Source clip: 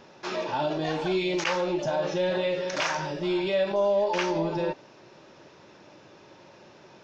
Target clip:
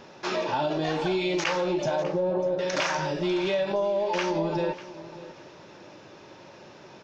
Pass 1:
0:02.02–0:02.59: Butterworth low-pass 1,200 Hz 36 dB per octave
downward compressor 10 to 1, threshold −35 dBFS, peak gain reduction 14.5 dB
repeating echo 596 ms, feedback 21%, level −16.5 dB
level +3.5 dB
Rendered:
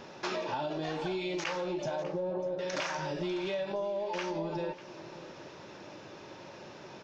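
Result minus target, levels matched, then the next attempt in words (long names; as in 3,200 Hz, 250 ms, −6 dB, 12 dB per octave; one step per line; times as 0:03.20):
downward compressor: peak gain reduction +8 dB
0:02.02–0:02.59: Butterworth low-pass 1,200 Hz 36 dB per octave
downward compressor 10 to 1, threshold −26 dBFS, peak gain reduction 6.5 dB
repeating echo 596 ms, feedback 21%, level −16.5 dB
level +3.5 dB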